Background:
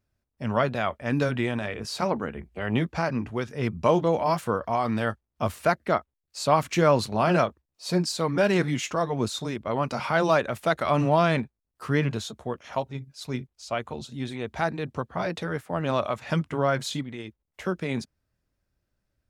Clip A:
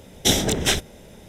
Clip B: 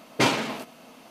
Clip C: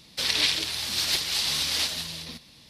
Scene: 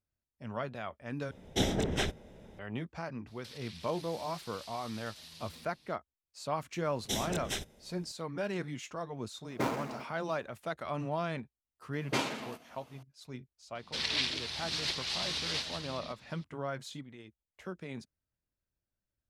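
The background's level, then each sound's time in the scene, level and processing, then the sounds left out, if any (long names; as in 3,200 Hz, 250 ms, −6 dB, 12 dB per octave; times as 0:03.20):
background −13.5 dB
0:01.31: overwrite with A −7.5 dB + low-pass filter 1,900 Hz 6 dB per octave
0:03.27: mix in C −12.5 dB + downward compressor 16 to 1, threshold −34 dBFS
0:06.84: mix in A −16 dB
0:09.40: mix in B −9 dB, fades 0.10 s + running median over 15 samples
0:11.93: mix in B −10.5 dB
0:13.75: mix in C −6 dB + high-frequency loss of the air 84 metres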